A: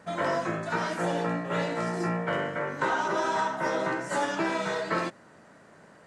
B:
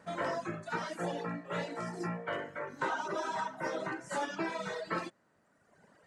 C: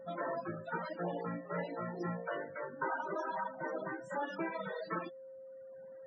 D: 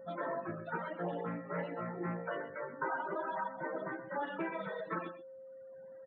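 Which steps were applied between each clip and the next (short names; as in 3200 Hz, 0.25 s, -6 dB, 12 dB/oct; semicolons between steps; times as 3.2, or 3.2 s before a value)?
reverb removal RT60 1.5 s; gain -5.5 dB
vocal rider 2 s; whine 530 Hz -46 dBFS; loudest bins only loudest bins 32; gain -2 dB
echo 0.127 s -12.5 dB; downsampling 8000 Hz; Doppler distortion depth 0.12 ms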